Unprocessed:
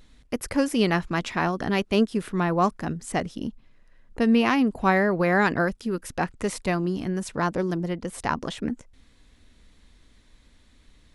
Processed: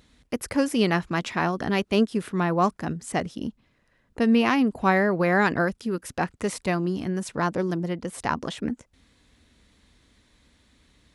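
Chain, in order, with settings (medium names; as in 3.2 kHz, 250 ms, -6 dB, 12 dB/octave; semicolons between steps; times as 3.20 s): high-pass 60 Hz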